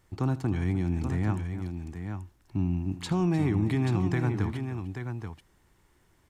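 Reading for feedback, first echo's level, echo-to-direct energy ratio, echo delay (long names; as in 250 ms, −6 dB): repeats not evenly spaced, −18.5 dB, −6.5 dB, 79 ms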